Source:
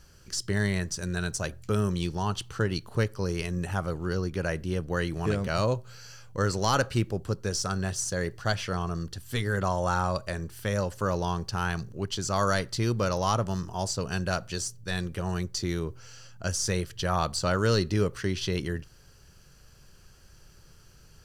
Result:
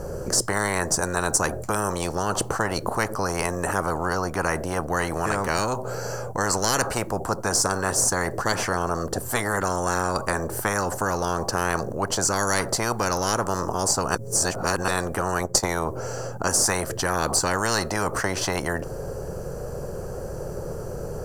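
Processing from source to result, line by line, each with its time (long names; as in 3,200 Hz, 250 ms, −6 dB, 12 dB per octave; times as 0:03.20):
0:14.15–0:14.88: reverse
0:15.40–0:15.86: transient designer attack +9 dB, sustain −8 dB
whole clip: drawn EQ curve 290 Hz 0 dB, 500 Hz +14 dB, 3,300 Hz −26 dB, 7,600 Hz −9 dB; every bin compressed towards the loudest bin 10 to 1; level +2.5 dB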